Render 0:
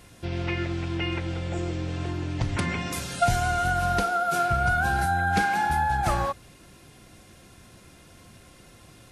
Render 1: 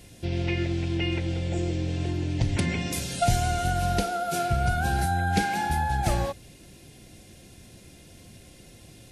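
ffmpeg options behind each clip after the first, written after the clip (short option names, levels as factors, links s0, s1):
-af "equalizer=f=1200:t=o:w=0.88:g=-14,volume=1.33"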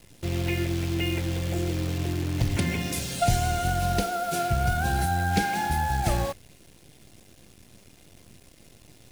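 -af "acrusher=bits=7:dc=4:mix=0:aa=0.000001"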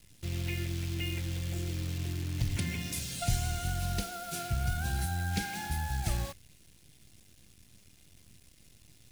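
-af "equalizer=f=580:t=o:w=2.7:g=-11,volume=0.631"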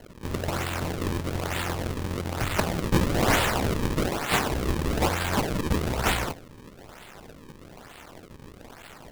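-af "aexciter=amount=5.8:drive=7.1:freq=4900,acrusher=samples=36:mix=1:aa=0.000001:lfo=1:lforange=57.6:lforate=1.1"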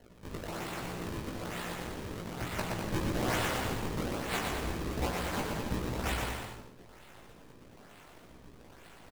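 -af "flanger=delay=16:depth=3:speed=1.2,aecho=1:1:120|216|292.8|354.2|403.4:0.631|0.398|0.251|0.158|0.1,volume=0.422"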